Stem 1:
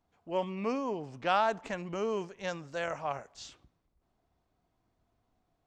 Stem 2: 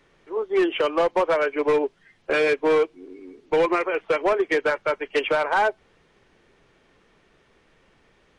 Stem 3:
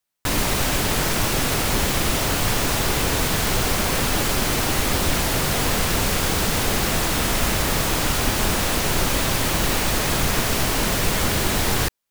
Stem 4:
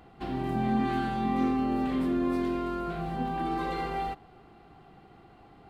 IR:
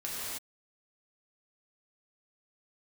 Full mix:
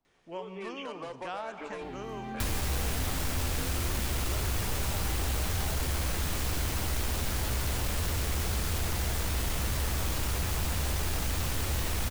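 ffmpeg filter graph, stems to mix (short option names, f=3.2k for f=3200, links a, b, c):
-filter_complex "[0:a]volume=-5.5dB,asplit=2[a][b];[b]volume=-13dB[c];[1:a]highshelf=f=3.8k:g=10.5,alimiter=limit=-20.5dB:level=0:latency=1:release=95,adelay=50,volume=-11.5dB,asplit=2[d][e];[e]volume=-18dB[f];[2:a]equalizer=f=67:w=2.9:g=15,flanger=delay=9.3:depth=2.5:regen=56:speed=0.39:shape=sinusoidal,aeval=exprs='0.0841*(abs(mod(val(0)/0.0841+3,4)-2)-1)':c=same,adelay=2150,volume=2.5dB[g];[3:a]adelay=1600,volume=-7dB[h];[4:a]atrim=start_sample=2205[i];[c][f]amix=inputs=2:normalize=0[j];[j][i]afir=irnorm=-1:irlink=0[k];[a][d][g][h][k]amix=inputs=5:normalize=0,acrossover=split=100|750|7100[l][m][n][o];[l]acompressor=threshold=-29dB:ratio=4[p];[m]acompressor=threshold=-40dB:ratio=4[q];[n]acompressor=threshold=-39dB:ratio=4[r];[o]acompressor=threshold=-39dB:ratio=4[s];[p][q][r][s]amix=inputs=4:normalize=0"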